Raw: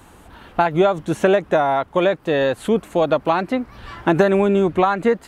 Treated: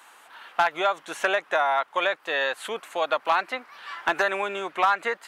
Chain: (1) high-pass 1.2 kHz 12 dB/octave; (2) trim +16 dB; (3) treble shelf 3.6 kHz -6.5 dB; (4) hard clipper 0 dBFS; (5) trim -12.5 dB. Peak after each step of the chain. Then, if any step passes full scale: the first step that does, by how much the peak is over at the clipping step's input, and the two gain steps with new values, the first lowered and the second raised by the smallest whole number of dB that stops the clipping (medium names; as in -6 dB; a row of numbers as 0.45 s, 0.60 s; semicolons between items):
-10.0 dBFS, +6.0 dBFS, +5.0 dBFS, 0.0 dBFS, -12.5 dBFS; step 2, 5.0 dB; step 2 +11 dB, step 5 -7.5 dB